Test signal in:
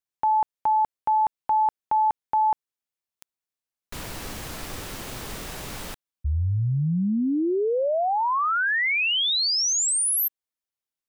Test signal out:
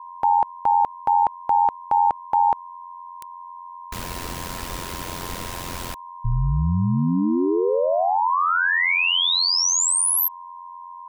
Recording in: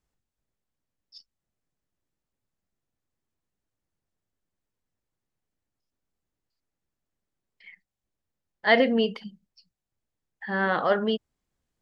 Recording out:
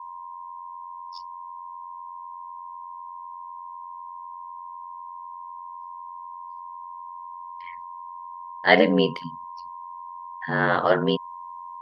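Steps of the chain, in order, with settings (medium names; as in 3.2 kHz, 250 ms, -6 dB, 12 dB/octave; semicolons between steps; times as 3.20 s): whistle 1 kHz -39 dBFS; ring modulator 44 Hz; trim +6 dB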